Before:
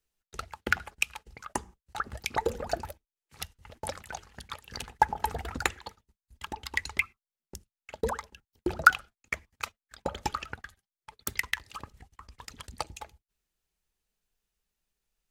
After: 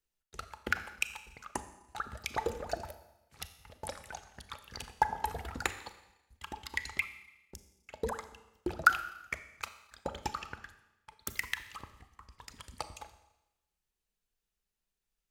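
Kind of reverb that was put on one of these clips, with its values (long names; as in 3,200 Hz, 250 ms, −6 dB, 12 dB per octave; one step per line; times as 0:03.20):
four-comb reverb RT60 0.97 s, combs from 28 ms, DRR 10.5 dB
level −5 dB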